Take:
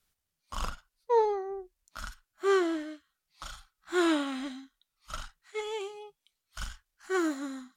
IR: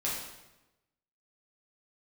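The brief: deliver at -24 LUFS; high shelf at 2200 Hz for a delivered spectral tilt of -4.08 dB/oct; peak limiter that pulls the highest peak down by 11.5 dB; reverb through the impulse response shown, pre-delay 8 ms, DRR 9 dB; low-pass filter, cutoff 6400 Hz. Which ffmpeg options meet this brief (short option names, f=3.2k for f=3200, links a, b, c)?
-filter_complex "[0:a]lowpass=6.4k,highshelf=f=2.2k:g=-7.5,alimiter=level_in=2.5dB:limit=-24dB:level=0:latency=1,volume=-2.5dB,asplit=2[a][b];[1:a]atrim=start_sample=2205,adelay=8[c];[b][c]afir=irnorm=-1:irlink=0,volume=-15dB[d];[a][d]amix=inputs=2:normalize=0,volume=13.5dB"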